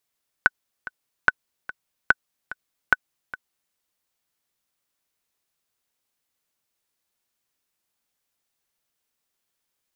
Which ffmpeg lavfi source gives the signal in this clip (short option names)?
-f lavfi -i "aevalsrc='pow(10,(-1.5-17.5*gte(mod(t,2*60/146),60/146))/20)*sin(2*PI*1500*mod(t,60/146))*exp(-6.91*mod(t,60/146)/0.03)':d=3.28:s=44100"